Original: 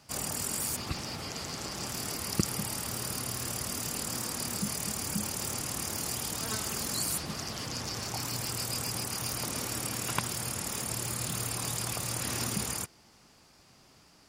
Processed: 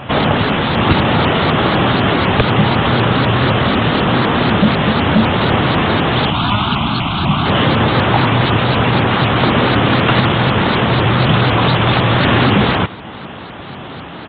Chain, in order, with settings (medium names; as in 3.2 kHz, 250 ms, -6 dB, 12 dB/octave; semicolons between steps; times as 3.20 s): high-pass 81 Hz; peaking EQ 2.4 kHz -5.5 dB 0.38 oct; in parallel at +0.5 dB: compression, threshold -45 dBFS, peak gain reduction 21.5 dB; on the sum: sine folder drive 16 dB, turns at -10.5 dBFS; 6.30–7.46 s: static phaser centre 1.8 kHz, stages 6; delay 98 ms -17.5 dB; resampled via 8 kHz; vibrato with a chosen wave saw up 4 Hz, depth 160 cents; trim +6.5 dB